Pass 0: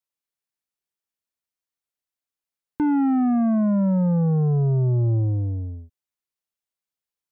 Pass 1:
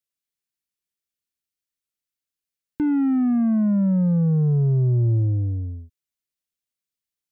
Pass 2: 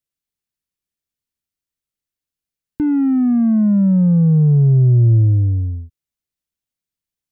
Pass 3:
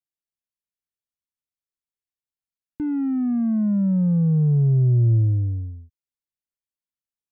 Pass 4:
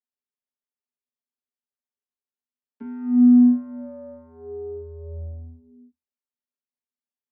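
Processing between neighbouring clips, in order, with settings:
parametric band 830 Hz −12 dB 1.3 octaves; level +1.5 dB
low-shelf EQ 260 Hz +9.5 dB
expander for the loud parts 1.5 to 1, over −23 dBFS; level −5.5 dB
channel vocoder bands 32, square 81.8 Hz; level −1 dB

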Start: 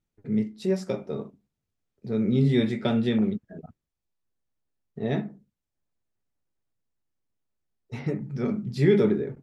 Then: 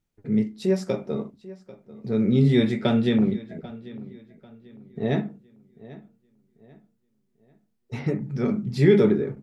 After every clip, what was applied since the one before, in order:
feedback echo with a low-pass in the loop 792 ms, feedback 36%, low-pass 4,600 Hz, level −18.5 dB
level +3 dB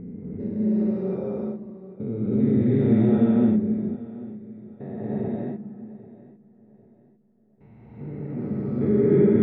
spectrum averaged block by block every 400 ms
low-pass filter 1,200 Hz 12 dB per octave
reverb whose tail is shaped and stops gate 380 ms rising, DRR −7 dB
level −5 dB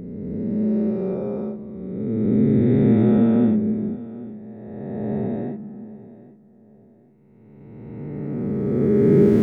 peak hold with a rise ahead of every peak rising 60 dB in 2.13 s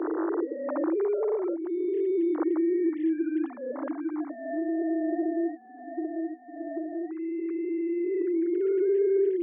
three sine waves on the formant tracks
Chebyshev high-pass with heavy ripple 320 Hz, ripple 3 dB
multiband upward and downward compressor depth 100%

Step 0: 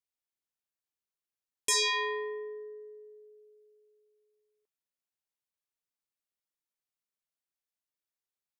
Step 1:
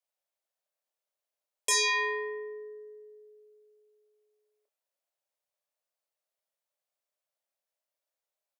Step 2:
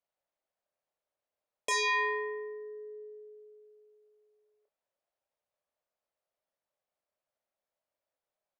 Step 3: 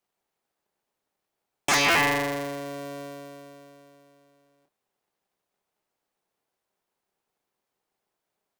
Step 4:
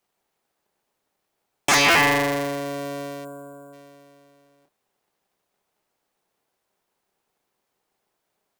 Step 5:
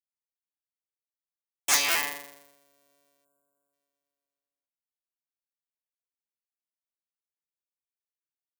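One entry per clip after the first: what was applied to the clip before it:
high-pass with resonance 590 Hz, resonance Q 4.9; double-tracking delay 29 ms −6.5 dB
dynamic equaliser 330 Hz, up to −6 dB, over −48 dBFS, Q 0.77; low-pass filter 1,200 Hz 6 dB per octave; level +5 dB
sub-harmonics by changed cycles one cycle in 3, inverted; level +8 dB
in parallel at −4.5 dB: soft clipping −23.5 dBFS, distortion −9 dB; on the sum: gain on a spectral selection 0:03.25–0:03.73, 1,600–6,700 Hz −23 dB; level +2 dB
RIAA equalisation recording; on a send at −22.5 dB: convolution reverb RT60 0.30 s, pre-delay 49 ms; on the sum: expander for the loud parts 2.5 to 1, over −29 dBFS; level −9.5 dB

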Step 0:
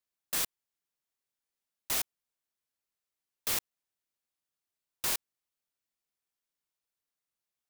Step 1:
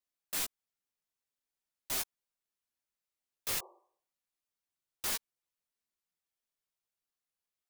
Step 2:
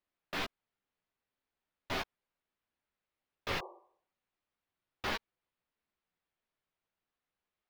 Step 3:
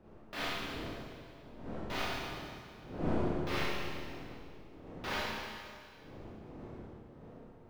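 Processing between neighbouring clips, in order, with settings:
multi-voice chorus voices 6, 0.38 Hz, delay 14 ms, depth 4.3 ms; healed spectral selection 0:03.59–0:04.13, 330–1,200 Hz both
high-frequency loss of the air 320 metres; level +8.5 dB
wind on the microphone 410 Hz −45 dBFS; four-comb reverb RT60 2.1 s, combs from 25 ms, DRR −7.5 dB; level −6 dB

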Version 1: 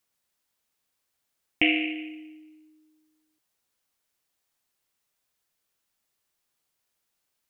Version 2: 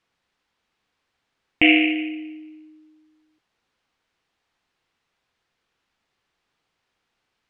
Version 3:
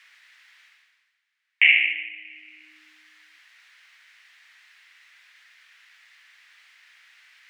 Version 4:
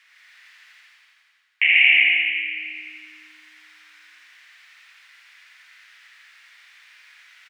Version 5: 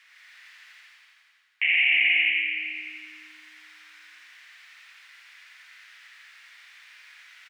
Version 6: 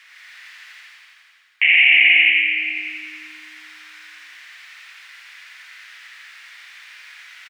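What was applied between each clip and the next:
low-pass filter 3,300 Hz 12 dB per octave; notch filter 600 Hz, Q 12; boost into a limiter +11 dB; level −1 dB
high-pass with resonance 1,900 Hz, resonance Q 3.3; reversed playback; upward compression, threshold −30 dBFS; reversed playback; level −5.5 dB
repeating echo 84 ms, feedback 58%, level −3 dB; convolution reverb RT60 2.1 s, pre-delay 94 ms, DRR −3 dB; level −2.5 dB
brickwall limiter −12.5 dBFS, peak gain reduction 11 dB
single-tap delay 574 ms −21.5 dB; level +8.5 dB

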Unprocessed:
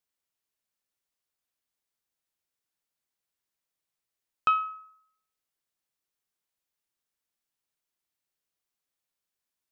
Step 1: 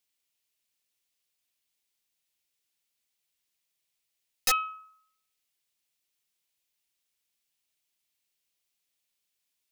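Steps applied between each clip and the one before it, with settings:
high shelf with overshoot 1,900 Hz +6.5 dB, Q 1.5
wrap-around overflow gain 17 dB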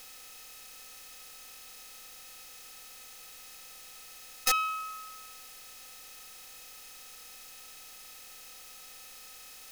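compressor on every frequency bin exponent 0.4
level −2.5 dB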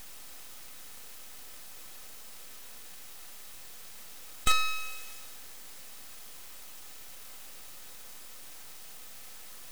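full-wave rectification
level +4.5 dB

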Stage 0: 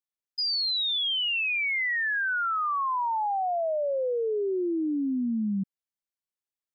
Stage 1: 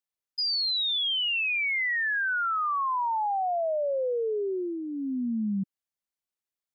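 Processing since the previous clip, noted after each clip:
dynamic equaliser 310 Hz, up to −7 dB, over −43 dBFS, Q 3.9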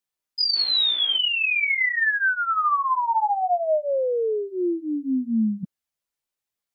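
sound drawn into the spectrogram noise, 0:00.55–0:01.17, 220–3,700 Hz −50 dBFS
multi-voice chorus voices 2, 0.53 Hz, delay 15 ms, depth 2.4 ms
level +8 dB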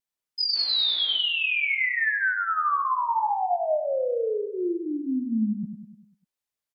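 pitch vibrato 0.69 Hz 17 cents
on a send: repeating echo 99 ms, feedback 54%, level −8 dB
on the sum: level −3.5 dB

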